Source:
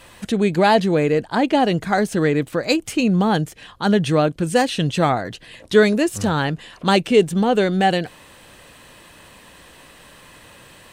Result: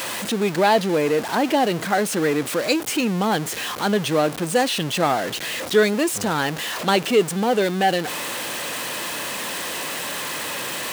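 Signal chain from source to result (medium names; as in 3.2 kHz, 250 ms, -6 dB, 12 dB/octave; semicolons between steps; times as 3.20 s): jump at every zero crossing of -19.5 dBFS; Bessel high-pass 260 Hz, order 2; trim -3 dB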